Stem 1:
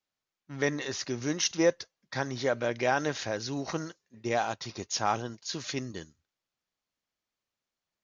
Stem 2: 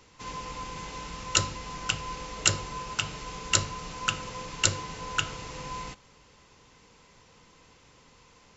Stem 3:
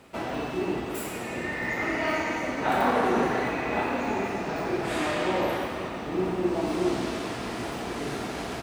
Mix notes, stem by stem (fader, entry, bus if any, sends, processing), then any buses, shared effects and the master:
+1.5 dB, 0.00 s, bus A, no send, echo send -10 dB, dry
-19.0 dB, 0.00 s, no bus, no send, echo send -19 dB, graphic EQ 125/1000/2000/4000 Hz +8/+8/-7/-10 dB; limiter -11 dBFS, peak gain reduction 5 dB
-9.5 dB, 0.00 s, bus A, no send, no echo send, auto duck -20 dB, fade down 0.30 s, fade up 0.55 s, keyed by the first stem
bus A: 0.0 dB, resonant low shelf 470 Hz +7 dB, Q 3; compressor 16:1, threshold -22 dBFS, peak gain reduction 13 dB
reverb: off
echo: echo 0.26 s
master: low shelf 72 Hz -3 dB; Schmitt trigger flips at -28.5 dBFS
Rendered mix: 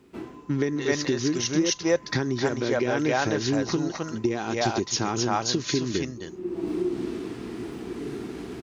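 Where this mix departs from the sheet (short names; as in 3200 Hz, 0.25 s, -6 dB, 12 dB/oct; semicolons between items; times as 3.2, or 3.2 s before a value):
stem 1 +1.5 dB -> +11.5 dB; master: missing Schmitt trigger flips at -28.5 dBFS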